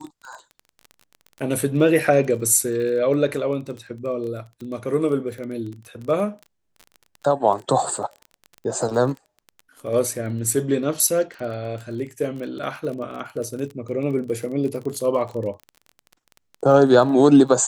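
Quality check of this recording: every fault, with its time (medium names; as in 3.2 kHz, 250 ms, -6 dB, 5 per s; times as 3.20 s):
crackle 25 per s -30 dBFS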